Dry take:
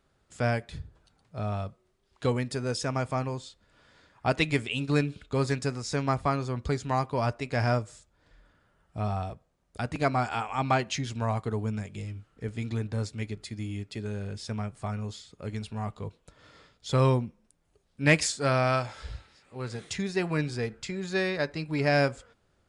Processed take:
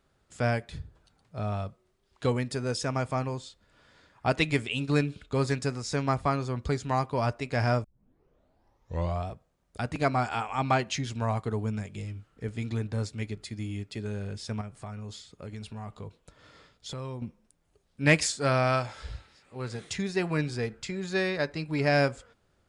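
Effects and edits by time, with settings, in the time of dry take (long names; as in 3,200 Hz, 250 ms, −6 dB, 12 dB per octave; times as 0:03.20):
0:07.84: tape start 1.45 s
0:14.61–0:17.22: downward compressor 5 to 1, threshold −36 dBFS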